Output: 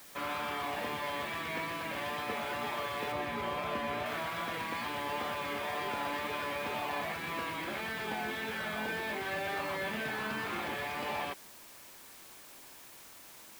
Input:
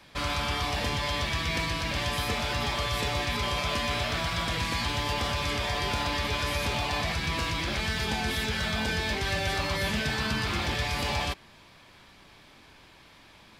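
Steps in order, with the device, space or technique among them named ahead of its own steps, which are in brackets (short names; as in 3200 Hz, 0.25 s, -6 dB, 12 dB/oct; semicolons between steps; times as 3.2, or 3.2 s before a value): wax cylinder (BPF 260–2200 Hz; wow and flutter 24 cents; white noise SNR 16 dB); 3.12–4.06 tilt -1.5 dB/oct; gain -3.5 dB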